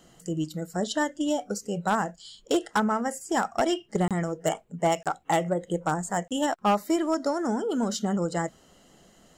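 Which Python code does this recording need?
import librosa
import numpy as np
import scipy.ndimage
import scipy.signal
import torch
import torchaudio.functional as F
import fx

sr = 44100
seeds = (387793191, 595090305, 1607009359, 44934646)

y = fx.fix_declip(x, sr, threshold_db=-17.0)
y = fx.fix_interpolate(y, sr, at_s=(4.08, 5.03, 6.28), length_ms=27.0)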